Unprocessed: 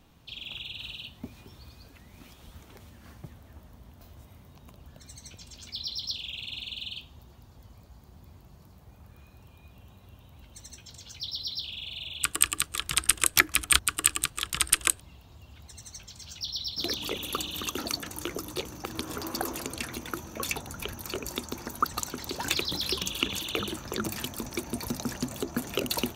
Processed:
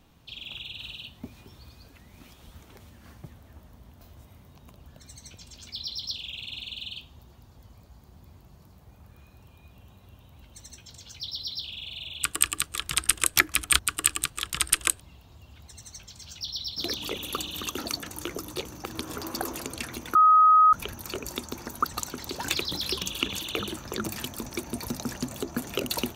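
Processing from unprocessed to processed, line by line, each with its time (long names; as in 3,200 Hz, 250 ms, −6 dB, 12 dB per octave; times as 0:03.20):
0:20.15–0:20.73: beep over 1,260 Hz −13.5 dBFS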